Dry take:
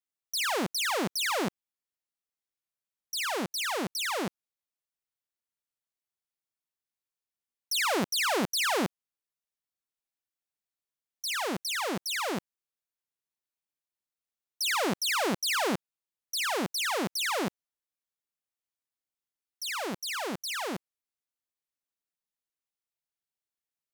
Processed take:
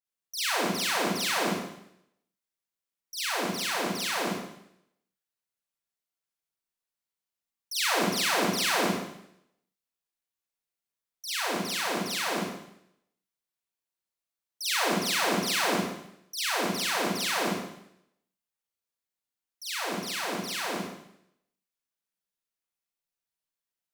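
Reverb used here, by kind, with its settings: Schroeder reverb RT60 0.76 s, combs from 33 ms, DRR -7.5 dB; gain -6.5 dB

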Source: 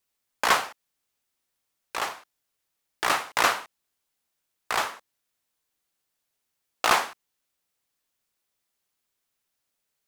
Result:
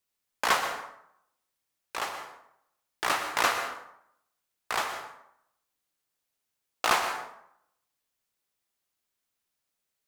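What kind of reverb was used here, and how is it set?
plate-style reverb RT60 0.75 s, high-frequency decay 0.6×, pre-delay 0.105 s, DRR 7.5 dB; gain -3.5 dB

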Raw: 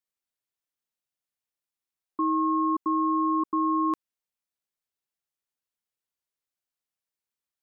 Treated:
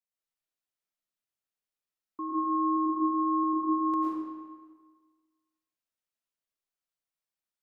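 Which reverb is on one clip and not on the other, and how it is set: digital reverb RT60 1.5 s, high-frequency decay 0.8×, pre-delay 70 ms, DRR -6.5 dB; gain -9.5 dB

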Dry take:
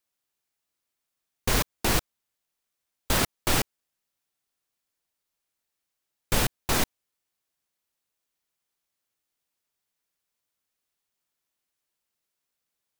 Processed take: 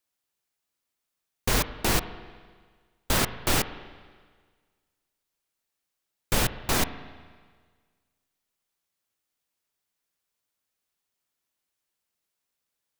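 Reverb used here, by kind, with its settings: spring tank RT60 1.6 s, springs 37/48 ms, chirp 60 ms, DRR 12 dB

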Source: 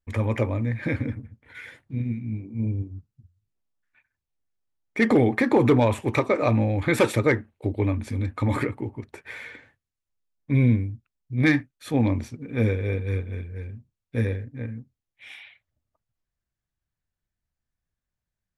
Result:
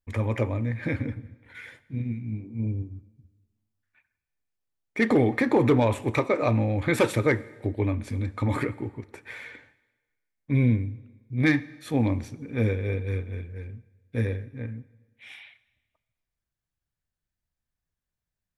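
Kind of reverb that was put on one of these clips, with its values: plate-style reverb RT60 1.3 s, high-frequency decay 0.95×, DRR 17.5 dB; gain -2 dB

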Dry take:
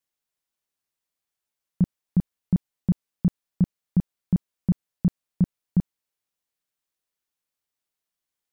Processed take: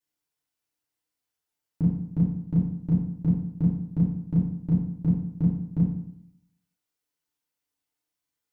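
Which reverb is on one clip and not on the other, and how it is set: FDN reverb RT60 0.69 s, low-frequency decay 1.2×, high-frequency decay 0.75×, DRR -6.5 dB; gain -6.5 dB

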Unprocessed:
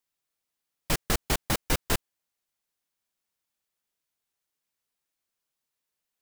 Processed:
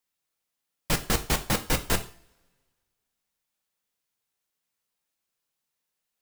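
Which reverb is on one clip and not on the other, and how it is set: two-slope reverb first 0.39 s, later 1.7 s, from -26 dB, DRR 6.5 dB; gain +1 dB

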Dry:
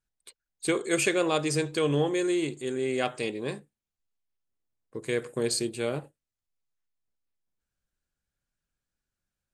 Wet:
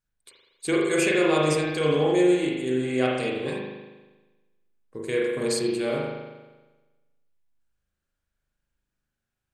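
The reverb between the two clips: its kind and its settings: spring tank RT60 1.2 s, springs 39 ms, chirp 50 ms, DRR -3.5 dB; gain -1 dB

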